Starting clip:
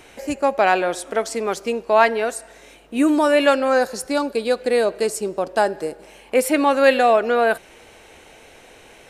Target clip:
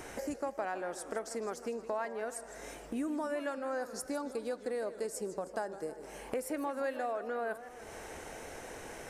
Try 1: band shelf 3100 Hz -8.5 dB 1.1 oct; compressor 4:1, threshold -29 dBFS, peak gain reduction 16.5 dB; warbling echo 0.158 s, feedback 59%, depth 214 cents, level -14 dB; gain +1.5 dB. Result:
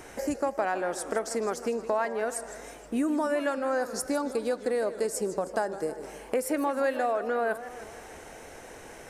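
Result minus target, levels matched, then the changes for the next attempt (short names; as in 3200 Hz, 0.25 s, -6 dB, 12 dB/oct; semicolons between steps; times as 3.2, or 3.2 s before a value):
compressor: peak gain reduction -8 dB
change: compressor 4:1, threshold -40 dBFS, peak gain reduction 25 dB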